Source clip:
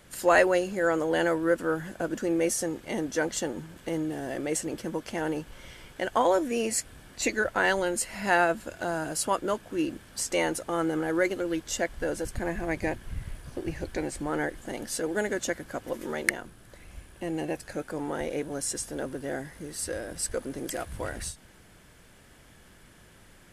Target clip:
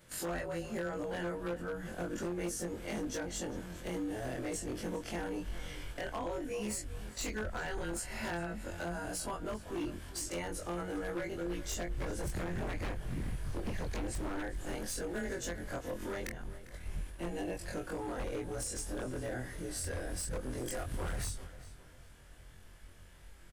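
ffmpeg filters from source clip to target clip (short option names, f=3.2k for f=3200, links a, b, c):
-filter_complex "[0:a]afftfilt=real='re':imag='-im':win_size=2048:overlap=0.75,agate=range=-7dB:threshold=-54dB:ratio=16:detection=peak,asubboost=boost=3.5:cutoff=93,acrossover=split=230[a][b];[b]acompressor=threshold=-39dB:ratio=16[c];[a][c]amix=inputs=2:normalize=0,aeval=exprs='0.02*(abs(mod(val(0)/0.02+3,4)-2)-1)':c=same,asplit=2[d][e];[e]alimiter=level_in=19.5dB:limit=-24dB:level=0:latency=1,volume=-19.5dB,volume=-3dB[f];[d][f]amix=inputs=2:normalize=0,asplit=2[g][h];[h]adelay=400,lowpass=f=5k:p=1,volume=-15dB,asplit=2[i][j];[j]adelay=400,lowpass=f=5k:p=1,volume=0.4,asplit=2[k][l];[l]adelay=400,lowpass=f=5k:p=1,volume=0.4,asplit=2[m][n];[n]adelay=400,lowpass=f=5k:p=1,volume=0.4[o];[g][i][k][m][o]amix=inputs=5:normalize=0,volume=1dB"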